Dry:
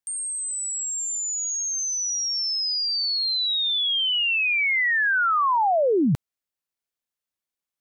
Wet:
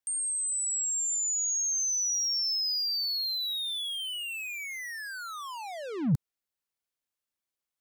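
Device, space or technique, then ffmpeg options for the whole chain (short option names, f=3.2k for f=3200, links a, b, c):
one-band saturation: -filter_complex "[0:a]acrossover=split=210|4900[a][b][c];[b]asoftclip=type=tanh:threshold=-37.5dB[d];[a][d][c]amix=inputs=3:normalize=0,volume=-1.5dB"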